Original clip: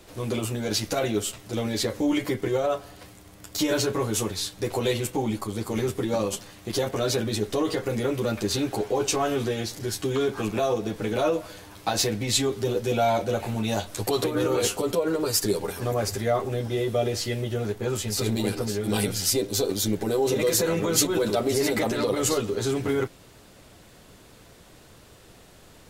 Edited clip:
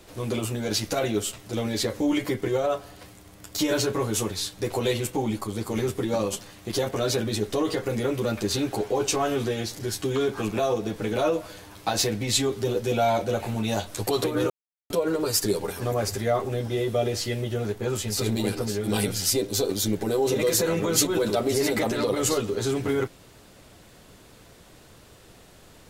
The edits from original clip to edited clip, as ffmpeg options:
-filter_complex "[0:a]asplit=3[a][b][c];[a]atrim=end=14.5,asetpts=PTS-STARTPTS,afade=t=out:st=14.496:d=0.004:c=hsin[d];[b]atrim=start=14.5:end=14.9,asetpts=PTS-STARTPTS,volume=0[e];[c]atrim=start=14.9,asetpts=PTS-STARTPTS,afade=t=in:d=0.004:c=hsin[f];[d][e][f]concat=n=3:v=0:a=1"

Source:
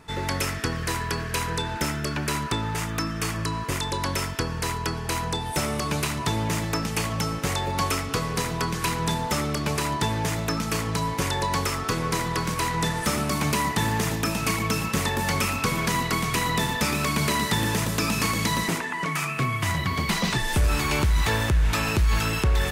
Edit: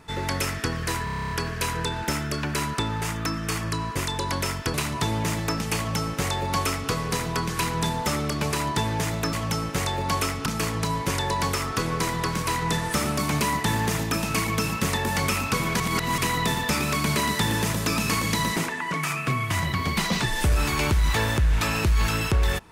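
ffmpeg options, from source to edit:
-filter_complex "[0:a]asplit=15[a][b][c][d][e][f][g][h][i][j][k][l][m][n][o];[a]atrim=end=1.072[p];[b]atrim=start=1.038:end=1.072[q];[c]atrim=start=1.038:end=1.072[r];[d]atrim=start=1.038:end=1.072[s];[e]atrim=start=1.038:end=1.072[t];[f]atrim=start=1.038:end=1.072[u];[g]atrim=start=1.038:end=1.072[v];[h]atrim=start=1.038:end=1.072[w];[i]atrim=start=1.038:end=1.072[x];[j]atrim=start=1.038:end=4.472[y];[k]atrim=start=5.988:end=10.582[z];[l]atrim=start=7.018:end=8.152[aa];[m]atrim=start=10.578:end=15.922[ab];[n]atrim=start=15.918:end=16.302,asetpts=PTS-STARTPTS,areverse[ac];[o]atrim=start=16.298[ad];[p][q]acrossfade=d=0.004:c1=hsin:c2=hsin[ae];[ae][r]acrossfade=d=0.004:c1=hsin:c2=hsin[af];[af][s]acrossfade=d=0.004:c1=hsin:c2=hsin[ag];[ag][t]acrossfade=d=0.004:c1=hsin:c2=hsin[ah];[ah][u]acrossfade=d=0.004:c1=hsin:c2=hsin[ai];[ai][v]acrossfade=d=0.004:c1=hsin:c2=hsin[aj];[aj][w]acrossfade=d=0.004:c1=hsin:c2=hsin[ak];[ak][x]acrossfade=d=0.004:c1=hsin:c2=hsin[al];[al][y]acrossfade=d=0.004:c1=hsin:c2=hsin[am];[am][z]acrossfade=d=0.004:c1=hsin:c2=hsin[an];[an][aa]acrossfade=d=0.004:c1=hsin:c2=hsin[ao];[ao][ab]acrossfade=d=0.004:c1=hsin:c2=hsin[ap];[ap][ac]acrossfade=d=0.004:c1=hsin:c2=hsin[aq];[aq][ad]acrossfade=d=0.004:c1=hsin:c2=hsin"

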